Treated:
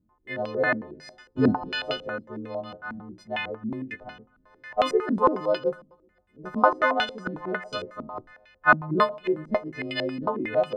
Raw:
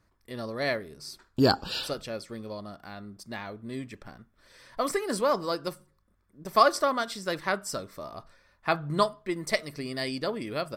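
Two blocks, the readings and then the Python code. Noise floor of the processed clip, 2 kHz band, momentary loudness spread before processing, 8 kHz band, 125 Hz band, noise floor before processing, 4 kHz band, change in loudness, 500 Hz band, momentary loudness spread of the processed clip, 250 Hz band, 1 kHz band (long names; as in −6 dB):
−65 dBFS, +7.0 dB, 19 LU, below −10 dB, +0.5 dB, −69 dBFS, −1.0 dB, +3.0 dB, +3.0 dB, 17 LU, +4.0 dB, +3.0 dB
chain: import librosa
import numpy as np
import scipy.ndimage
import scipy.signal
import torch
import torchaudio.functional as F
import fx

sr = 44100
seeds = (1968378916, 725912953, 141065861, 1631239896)

y = fx.freq_snap(x, sr, grid_st=3)
y = fx.echo_feedback(y, sr, ms=126, feedback_pct=53, wet_db=-23.0)
y = fx.filter_held_lowpass(y, sr, hz=11.0, low_hz=240.0, high_hz=2800.0)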